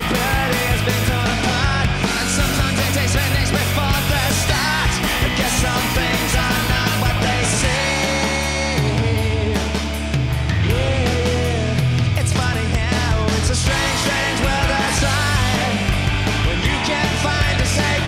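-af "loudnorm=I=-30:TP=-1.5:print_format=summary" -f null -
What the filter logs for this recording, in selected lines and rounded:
Input Integrated:    -17.9 LUFS
Input True Peak:      -6.9 dBTP
Input LRA:             1.2 LU
Input Threshold:     -27.9 LUFS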